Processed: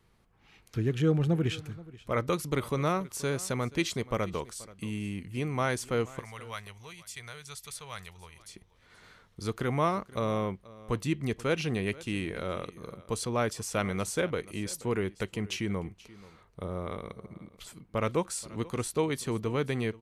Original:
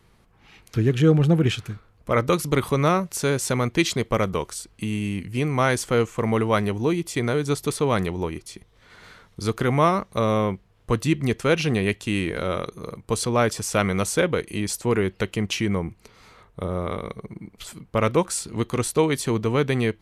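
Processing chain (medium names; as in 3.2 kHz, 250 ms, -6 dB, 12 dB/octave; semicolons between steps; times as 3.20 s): 6.19–8.40 s: amplifier tone stack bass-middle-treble 10-0-10; delay 480 ms -20 dB; trim -8.5 dB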